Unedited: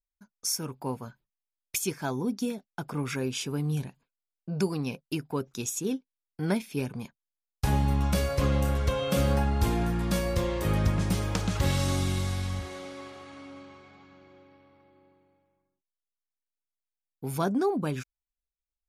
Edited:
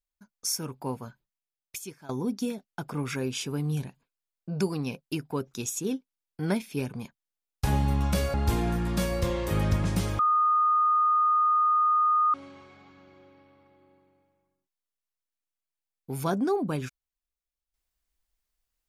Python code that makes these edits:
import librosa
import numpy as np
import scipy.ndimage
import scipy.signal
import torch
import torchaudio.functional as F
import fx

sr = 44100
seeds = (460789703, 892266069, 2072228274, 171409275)

y = fx.edit(x, sr, fx.fade_out_to(start_s=1.06, length_s=1.03, floor_db=-18.5),
    fx.cut(start_s=8.34, length_s=1.14),
    fx.bleep(start_s=11.33, length_s=2.15, hz=1230.0, db=-19.5), tone=tone)